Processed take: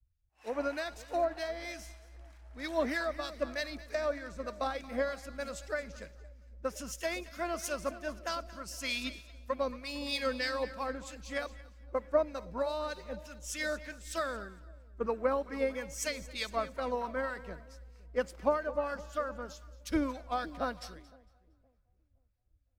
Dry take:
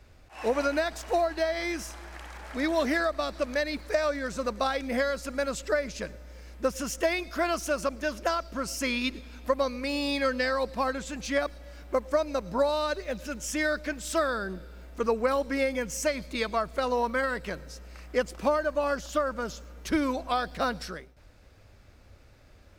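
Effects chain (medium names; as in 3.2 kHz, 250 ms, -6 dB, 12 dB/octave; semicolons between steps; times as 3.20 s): harmonic tremolo 3.2 Hz, depth 50%, crossover 1.1 kHz; two-band feedback delay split 730 Hz, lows 516 ms, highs 229 ms, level -12 dB; three bands expanded up and down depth 100%; trim -5.5 dB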